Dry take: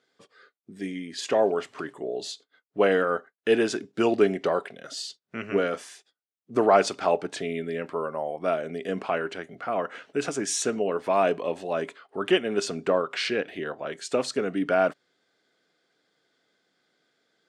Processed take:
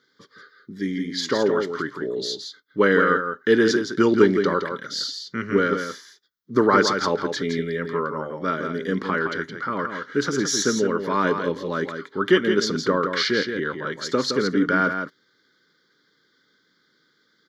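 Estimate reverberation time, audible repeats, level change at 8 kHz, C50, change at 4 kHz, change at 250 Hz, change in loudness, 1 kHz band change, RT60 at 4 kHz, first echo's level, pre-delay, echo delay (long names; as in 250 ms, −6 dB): no reverb audible, 1, +3.5 dB, no reverb audible, +7.0 dB, +7.0 dB, +4.0 dB, +3.5 dB, no reverb audible, −7.0 dB, no reverb audible, 167 ms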